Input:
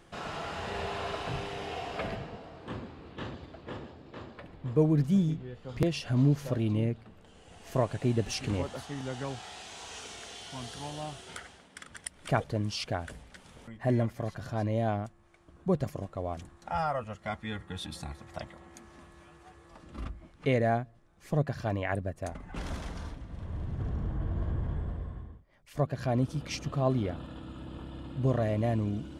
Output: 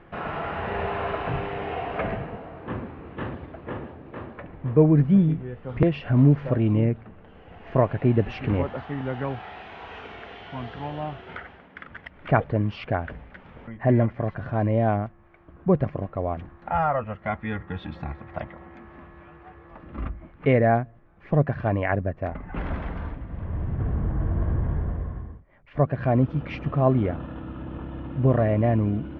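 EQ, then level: LPF 2400 Hz 24 dB/oct; +7.5 dB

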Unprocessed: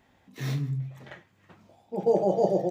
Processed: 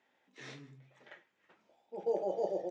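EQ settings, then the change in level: air absorption 65 m; speaker cabinet 440–8400 Hz, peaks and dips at 710 Hz -5 dB, 1100 Hz -5 dB, 4300 Hz -3 dB; -6.5 dB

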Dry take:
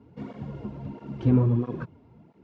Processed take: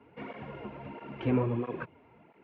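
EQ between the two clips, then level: three-band isolator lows -13 dB, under 370 Hz, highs -19 dB, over 2600 Hz; dynamic EQ 1400 Hz, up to -4 dB, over -51 dBFS, Q 1.4; bell 2500 Hz +12 dB 1.2 oct; +2.0 dB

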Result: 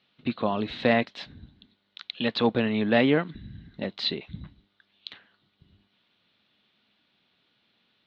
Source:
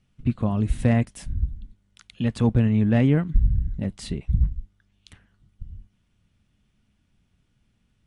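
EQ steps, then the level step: HPF 410 Hz 12 dB/oct; synth low-pass 4000 Hz, resonance Q 6.1; air absorption 200 m; +6.5 dB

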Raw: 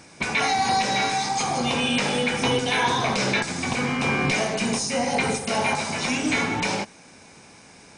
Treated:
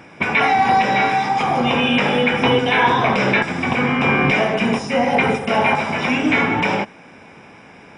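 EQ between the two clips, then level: polynomial smoothing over 25 samples; low shelf 64 Hz -9.5 dB; +7.5 dB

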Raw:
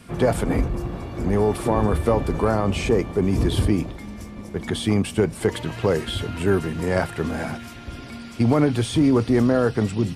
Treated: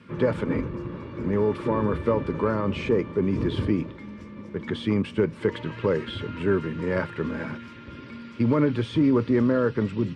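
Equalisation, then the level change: BPF 110–2900 Hz; Butterworth band-stop 730 Hz, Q 2.9; -2.5 dB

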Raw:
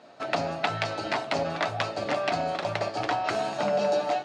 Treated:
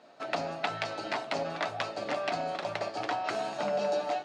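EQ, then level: low shelf 65 Hz -5.5 dB; bell 87 Hz -8 dB 1.1 oct; -4.5 dB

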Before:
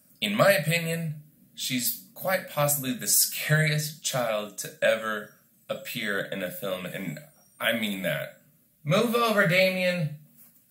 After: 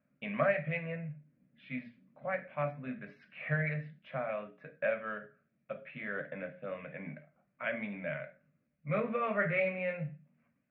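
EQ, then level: elliptic low-pass 2400 Hz, stop band 70 dB; notches 60/120/180/240/300/360/420 Hz; -8.5 dB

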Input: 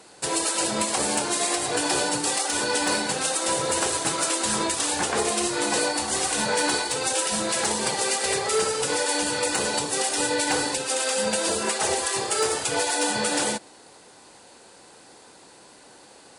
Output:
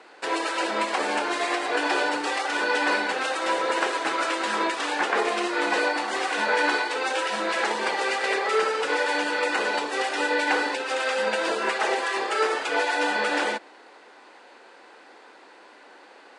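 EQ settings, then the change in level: HPF 270 Hz 24 dB/oct; tape spacing loss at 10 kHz 22 dB; bell 1900 Hz +9.5 dB 2 oct; 0.0 dB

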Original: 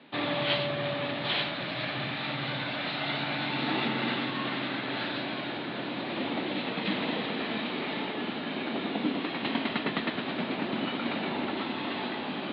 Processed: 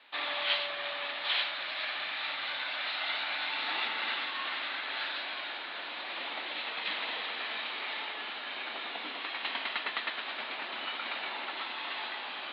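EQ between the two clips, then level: HPF 1000 Hz 12 dB/oct; 0.0 dB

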